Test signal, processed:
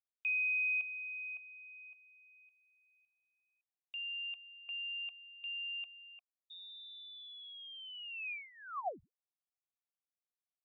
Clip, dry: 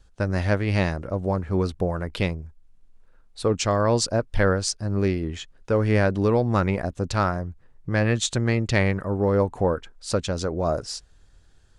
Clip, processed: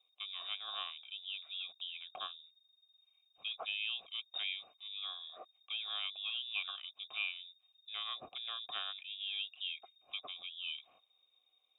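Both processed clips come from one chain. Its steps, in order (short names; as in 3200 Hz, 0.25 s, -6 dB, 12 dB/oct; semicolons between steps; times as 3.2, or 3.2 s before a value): inverted band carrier 3700 Hz; vowel filter a; gain -2.5 dB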